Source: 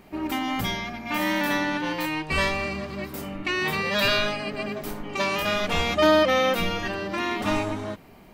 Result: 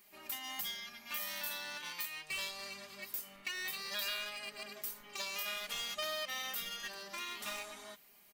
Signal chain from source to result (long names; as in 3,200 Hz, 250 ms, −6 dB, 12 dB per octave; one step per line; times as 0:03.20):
first-order pre-emphasis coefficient 0.97
comb filter 4.9 ms, depth 66%
downward compressor 2.5 to 1, threshold −39 dBFS, peak gain reduction 8.5 dB
in parallel at −11.5 dB: bit reduction 6 bits
on the sum: level −2 dB